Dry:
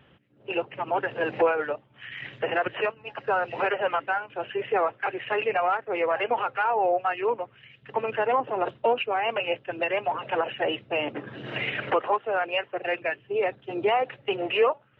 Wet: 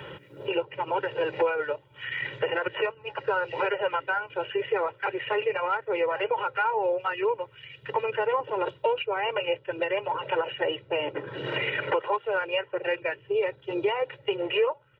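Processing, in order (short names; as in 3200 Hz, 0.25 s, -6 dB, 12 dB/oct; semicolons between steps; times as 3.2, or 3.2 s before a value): comb 2.1 ms, depth 97%; three-band squash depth 70%; gain -5 dB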